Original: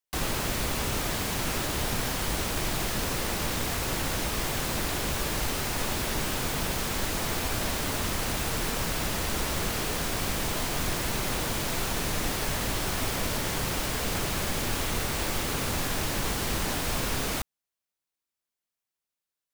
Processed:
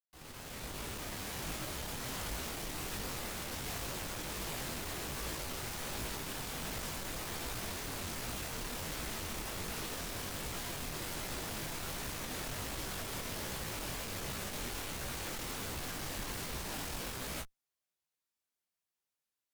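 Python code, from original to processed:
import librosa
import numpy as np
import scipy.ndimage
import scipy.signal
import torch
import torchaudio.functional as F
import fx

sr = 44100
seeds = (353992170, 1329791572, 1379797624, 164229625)

y = fx.fade_in_head(x, sr, length_s=2.1)
y = fx.tube_stage(y, sr, drive_db=40.0, bias=0.65)
y = fx.detune_double(y, sr, cents=46)
y = y * librosa.db_to_amplitude(5.0)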